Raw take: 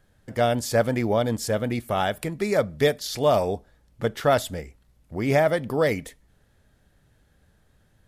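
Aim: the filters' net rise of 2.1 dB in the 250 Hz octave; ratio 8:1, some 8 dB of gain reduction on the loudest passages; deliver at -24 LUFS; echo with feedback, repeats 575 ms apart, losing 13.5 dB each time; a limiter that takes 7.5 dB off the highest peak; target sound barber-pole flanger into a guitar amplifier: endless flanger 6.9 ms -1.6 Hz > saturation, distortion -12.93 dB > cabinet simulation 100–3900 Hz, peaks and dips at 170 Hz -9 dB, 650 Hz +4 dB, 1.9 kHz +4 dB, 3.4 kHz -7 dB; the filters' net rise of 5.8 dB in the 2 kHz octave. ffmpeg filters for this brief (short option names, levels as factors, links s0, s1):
-filter_complex "[0:a]equalizer=f=250:t=o:g=4,equalizer=f=2000:t=o:g=4.5,acompressor=threshold=0.0794:ratio=8,alimiter=limit=0.106:level=0:latency=1,aecho=1:1:575|1150:0.211|0.0444,asplit=2[s0][s1];[s1]adelay=6.9,afreqshift=-1.6[s2];[s0][s2]amix=inputs=2:normalize=1,asoftclip=threshold=0.0422,highpass=100,equalizer=f=170:t=q:w=4:g=-9,equalizer=f=650:t=q:w=4:g=4,equalizer=f=1900:t=q:w=4:g=4,equalizer=f=3400:t=q:w=4:g=-7,lowpass=f=3900:w=0.5412,lowpass=f=3900:w=1.3066,volume=3.98"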